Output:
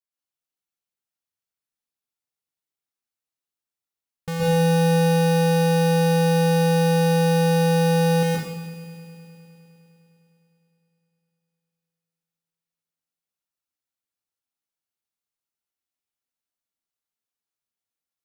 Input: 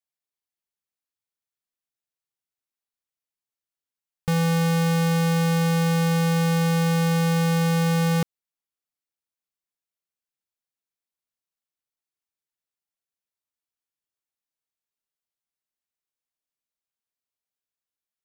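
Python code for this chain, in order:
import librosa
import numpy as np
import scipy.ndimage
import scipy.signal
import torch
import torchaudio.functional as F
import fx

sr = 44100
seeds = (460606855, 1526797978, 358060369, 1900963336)

p1 = fx.formant_shift(x, sr, semitones=5)
p2 = p1 + fx.echo_heads(p1, sr, ms=102, heads='all three', feedback_pct=67, wet_db=-20.0, dry=0)
p3 = fx.rev_plate(p2, sr, seeds[0], rt60_s=0.8, hf_ratio=0.9, predelay_ms=110, drr_db=-4.5)
y = p3 * librosa.db_to_amplitude(-6.0)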